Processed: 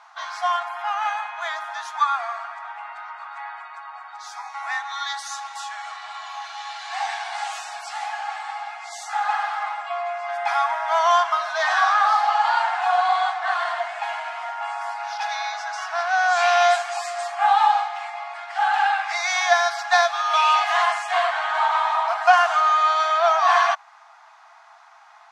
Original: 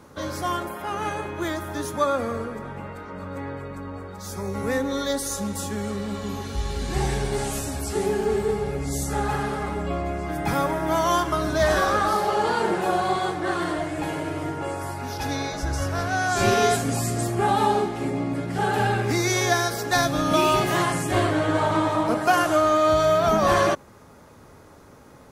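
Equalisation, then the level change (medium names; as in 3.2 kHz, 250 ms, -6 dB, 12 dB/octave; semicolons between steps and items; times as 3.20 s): brick-wall FIR high-pass 650 Hz; distance through air 140 m; +6.0 dB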